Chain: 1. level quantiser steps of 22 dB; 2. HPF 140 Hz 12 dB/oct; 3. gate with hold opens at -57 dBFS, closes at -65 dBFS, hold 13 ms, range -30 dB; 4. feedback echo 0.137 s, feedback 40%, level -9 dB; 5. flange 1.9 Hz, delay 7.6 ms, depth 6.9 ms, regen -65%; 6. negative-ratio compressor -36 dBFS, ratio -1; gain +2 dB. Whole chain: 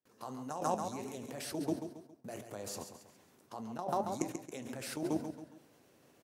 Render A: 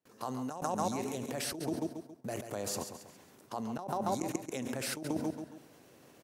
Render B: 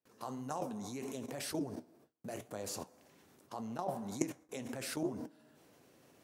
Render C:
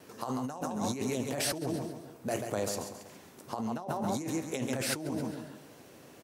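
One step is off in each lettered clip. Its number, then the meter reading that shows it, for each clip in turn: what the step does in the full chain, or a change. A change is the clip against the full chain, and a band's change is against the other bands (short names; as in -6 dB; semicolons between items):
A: 5, 1 kHz band -3.0 dB; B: 4, momentary loudness spread change -5 LU; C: 1, crest factor change -6.5 dB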